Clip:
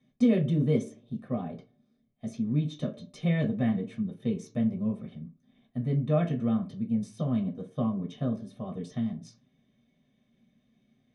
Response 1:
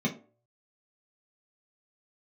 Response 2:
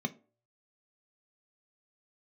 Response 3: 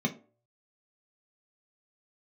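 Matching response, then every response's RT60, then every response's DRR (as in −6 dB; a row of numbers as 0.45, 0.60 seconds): 1; 0.45, 0.45, 0.45 seconds; −2.0, 8.5, 2.5 decibels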